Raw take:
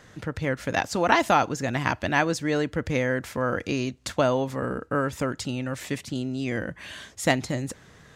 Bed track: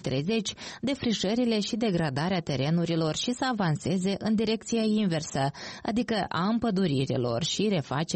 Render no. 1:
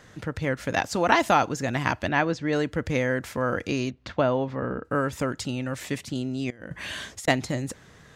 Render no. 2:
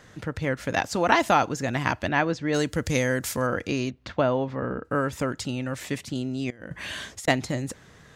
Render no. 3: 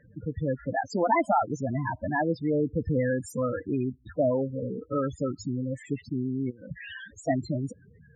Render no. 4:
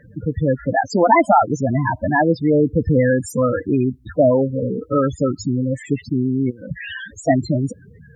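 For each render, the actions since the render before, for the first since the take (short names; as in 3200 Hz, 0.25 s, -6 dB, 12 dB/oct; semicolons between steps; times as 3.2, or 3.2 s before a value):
2.08–2.53 air absorption 150 m; 3.9–4.85 air absorption 230 m; 6.5–7.28 negative-ratio compressor -37 dBFS, ratio -0.5
2.54–3.47 tone controls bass +2 dB, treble +14 dB
loudest bins only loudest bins 8
gain +10.5 dB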